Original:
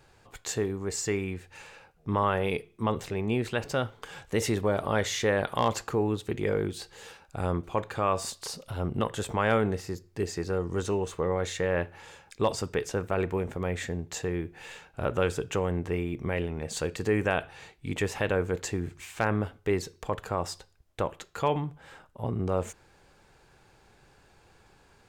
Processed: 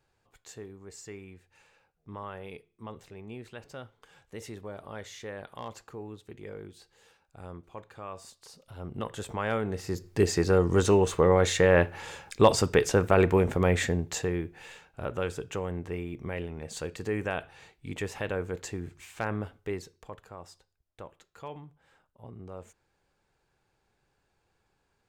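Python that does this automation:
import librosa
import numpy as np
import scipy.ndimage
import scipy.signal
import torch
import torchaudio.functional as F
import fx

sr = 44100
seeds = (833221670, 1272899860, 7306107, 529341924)

y = fx.gain(x, sr, db=fx.line((8.47, -14.5), (9.12, -5.0), (9.66, -5.0), (10.06, 7.0), (13.77, 7.0), (14.87, -5.0), (19.57, -5.0), (20.29, -15.0)))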